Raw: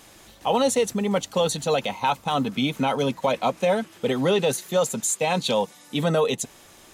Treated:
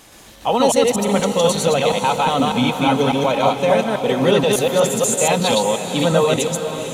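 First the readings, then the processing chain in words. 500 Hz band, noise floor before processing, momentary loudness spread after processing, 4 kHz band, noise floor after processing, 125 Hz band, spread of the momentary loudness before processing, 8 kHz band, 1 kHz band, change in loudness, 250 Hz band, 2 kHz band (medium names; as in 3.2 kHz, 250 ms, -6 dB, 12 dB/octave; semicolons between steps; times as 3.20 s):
+7.0 dB, -50 dBFS, 4 LU, +7.0 dB, -43 dBFS, +7.0 dB, 4 LU, +7.0 dB, +7.0 dB, +6.5 dB, +7.0 dB, +7.0 dB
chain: chunks repeated in reverse 120 ms, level -0.5 dB; echo that smears into a reverb 474 ms, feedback 53%, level -9 dB; trim +3.5 dB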